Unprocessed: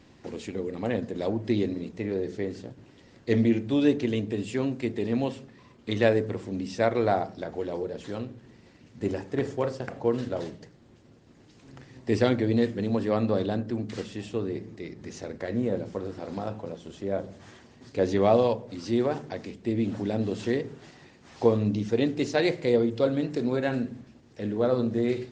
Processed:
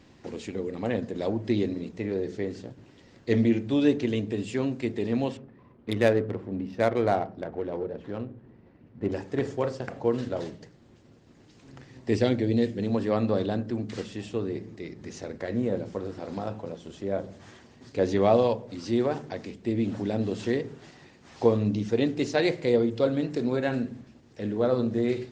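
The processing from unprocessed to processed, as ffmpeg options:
-filter_complex "[0:a]asettb=1/sr,asplit=3[a][b][c];[a]atrim=end=5.374[d];[b]atrim=start=5.37:end=9.12,asetpts=PTS-STARTPTS,afade=t=in:d=0.004:c=qsin,afade=t=out:st=3.746:d=0.004:c=qsin,adynamicsmooth=sensitivity=3.5:basefreq=1.5k[e];[c]atrim=start=9.116[f];[d][e]acrossfade=d=0.004:c1=hsin:c2=qsin[g];[g][f]acrossfade=d=0.004:c1=qsin:c2=hsin,asettb=1/sr,asplit=3[h][i][j];[h]atrim=end=12.164[k];[i]atrim=start=12.16:end=12.82,asetpts=PTS-STARTPTS,afade=t=in:d=0.004:c=qsin,afade=t=out:st=0.656:d=0.004:c=qsin,equalizer=f=1.2k:t=o:w=1.1:g=-8[l];[j]atrim=start=12.816[m];[k][l]acrossfade=d=0.004:c1=hsin:c2=qsin[n];[n][m]acrossfade=d=0.004:c1=qsin:c2=hsin"

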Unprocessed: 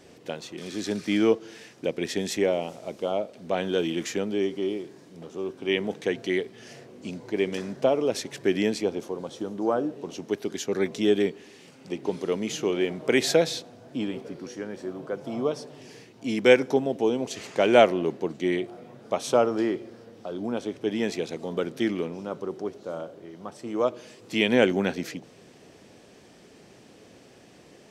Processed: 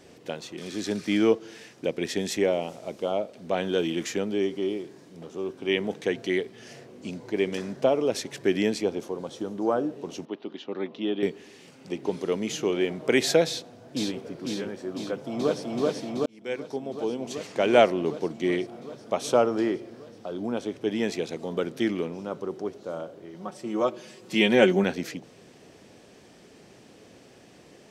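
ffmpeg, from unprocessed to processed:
-filter_complex "[0:a]asettb=1/sr,asplit=3[a][b][c];[a]atrim=end=10.254[d];[b]atrim=start=10.25:end=11.23,asetpts=PTS-STARTPTS,afade=t=in:d=0.004:c=qsin,afade=t=out:st=0.976:d=0.004:c=qsin,highpass=280,equalizer=f=430:t=q:w=4:g=-9,equalizer=f=680:t=q:w=4:g=-4,equalizer=f=1.6k:t=q:w=4:g=-10,equalizer=f=2.2k:t=q:w=4:g=-9,lowpass=f=3.2k:w=0.5412,lowpass=f=3.2k:w=1.3066[e];[c]atrim=start=11.226[f];[d][e]acrossfade=d=0.004:c1=hsin:c2=qsin[g];[g][f]acrossfade=d=0.004:c1=qsin:c2=hsin,asplit=2[h][i];[i]afade=t=in:st=13.46:d=0.01,afade=t=out:st=14.23:d=0.01,aecho=0:1:500|1000|1500|2000|2500|3000|3500|4000|4500:0.707946|0.424767|0.25486|0.152916|0.0917498|0.0550499|0.0330299|0.019818|0.0118908[j];[h][j]amix=inputs=2:normalize=0,asplit=2[k][l];[l]afade=t=in:st=15.01:d=0.01,afade=t=out:st=15.62:d=0.01,aecho=0:1:380|760|1140|1520|1900|2280|2660|3040|3420|3800|4180|4560:1|0.8|0.64|0.512|0.4096|0.32768|0.262144|0.209715|0.167772|0.134218|0.107374|0.0858993[m];[k][m]amix=inputs=2:normalize=0,asettb=1/sr,asplit=3[n][o][p];[n]atrim=end=23.344[q];[o]atrim=start=23.34:end=24.84,asetpts=PTS-STARTPTS,afade=t=in:d=0.004:c=qsin,afade=t=out:st=1.496:d=0.004:c=qsin,aecho=1:1:5.4:0.65,atrim=end_sample=66150[r];[p]atrim=start=24.836[s];[q][r]acrossfade=d=0.004:c1=hsin:c2=qsin[t];[t][s]acrossfade=d=0.004:c1=qsin:c2=hsin,asplit=2[u][v];[u]atrim=end=16.26,asetpts=PTS-STARTPTS,afade=t=out:st=16.256:d=0.004:c=hsin[w];[v]atrim=start=16.26,asetpts=PTS-STARTPTS,afade=t=in:d=2.35:c=qsin[x];[w][x]concat=n=2:v=0:a=1"

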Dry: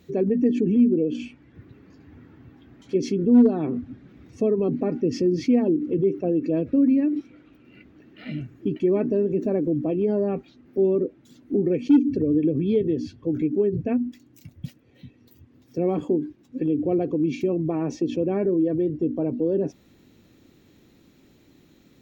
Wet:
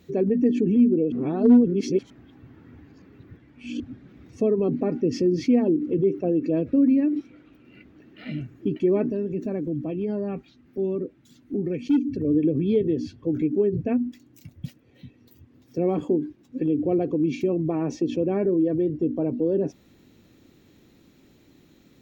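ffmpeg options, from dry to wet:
-filter_complex "[0:a]asettb=1/sr,asplit=3[a][b][c];[a]atrim=end=9.104[d];[b]atrim=start=9.1:end=12.25,asetpts=PTS-STARTPTS,afade=t=in:d=0.004:c=qsin,afade=t=out:st=3.146:d=0.004:c=qsin,equalizer=f=500:t=o:w=2.1:g=-7[e];[c]atrim=start=12.246[f];[d][e]acrossfade=d=0.004:c1=hsin:c2=qsin[g];[g][f]acrossfade=d=0.004:c1=qsin:c2=hsin,asplit=3[h][i][j];[h]atrim=end=1.122[k];[i]atrim=start=1.118:end=3.802,asetpts=PTS-STARTPTS,areverse[l];[j]atrim=start=3.798[m];[k][l]acrossfade=d=0.004:c1=hsin:c2=hsin[n];[n][m]acrossfade=d=0.004:c1=hsin:c2=hsin"

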